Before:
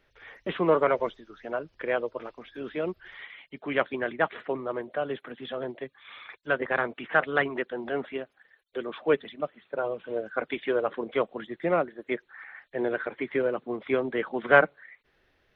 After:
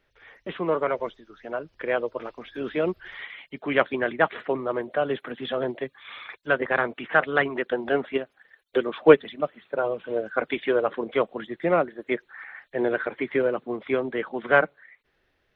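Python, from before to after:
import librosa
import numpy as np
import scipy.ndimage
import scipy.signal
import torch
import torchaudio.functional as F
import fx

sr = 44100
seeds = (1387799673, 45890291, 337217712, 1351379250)

y = fx.rider(x, sr, range_db=5, speed_s=2.0)
y = fx.transient(y, sr, attack_db=7, sustain_db=-1, at=(7.64, 9.29))
y = F.gain(torch.from_numpy(y), 2.0).numpy()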